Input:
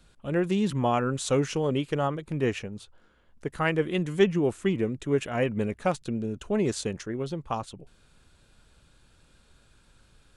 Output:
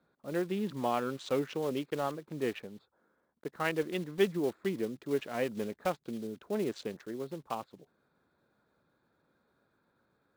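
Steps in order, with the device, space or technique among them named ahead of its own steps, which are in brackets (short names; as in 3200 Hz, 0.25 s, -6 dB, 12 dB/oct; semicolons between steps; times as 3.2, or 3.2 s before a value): Wiener smoothing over 15 samples; early digital voice recorder (BPF 220–3700 Hz; block floating point 5-bit); bell 3700 Hz +4 dB 0.72 oct; gain -5.5 dB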